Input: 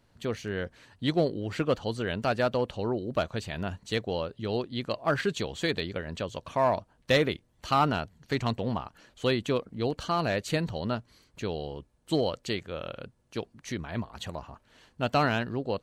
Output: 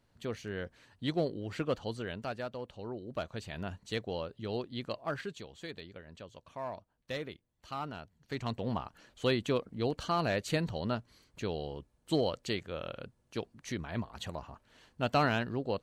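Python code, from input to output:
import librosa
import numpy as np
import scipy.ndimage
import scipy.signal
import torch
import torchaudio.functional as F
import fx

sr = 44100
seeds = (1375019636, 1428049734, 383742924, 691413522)

y = fx.gain(x, sr, db=fx.line((1.92, -6.0), (2.54, -14.0), (3.58, -6.0), (4.89, -6.0), (5.45, -15.0), (7.92, -15.0), (8.77, -3.0)))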